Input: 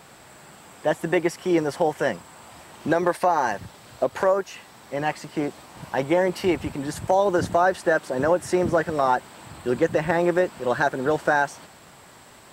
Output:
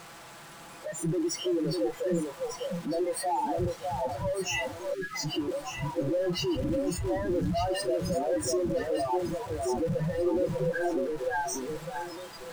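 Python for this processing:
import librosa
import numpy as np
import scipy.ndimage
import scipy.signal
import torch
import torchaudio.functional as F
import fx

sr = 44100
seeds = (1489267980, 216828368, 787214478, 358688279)

y = np.sign(x) * np.sqrt(np.mean(np.square(x)))
y = scipy.signal.sosfilt(scipy.signal.butter(6, 10000.0, 'lowpass', fs=sr, output='sos'), y)
y = fx.high_shelf(y, sr, hz=6900.0, db=-5.0)
y = y + 0.79 * np.pad(y, (int(6.0 * sr / 1000.0), 0))[:len(y)]
y = fx.leveller(y, sr, passes=2)
y = fx.peak_eq(y, sr, hz=1200.0, db=7.0, octaves=1.6)
y = 10.0 ** (-27.5 / 20.0) * np.tanh(y / 10.0 ** (-27.5 / 20.0))
y = fx.noise_reduce_blind(y, sr, reduce_db=22)
y = fx.echo_alternate(y, sr, ms=601, hz=870.0, feedback_pct=51, wet_db=-3)
y = fx.spec_erase(y, sr, start_s=4.94, length_s=0.21, low_hz=420.0, high_hz=1200.0)
y = y * 10.0 ** (2.5 / 20.0)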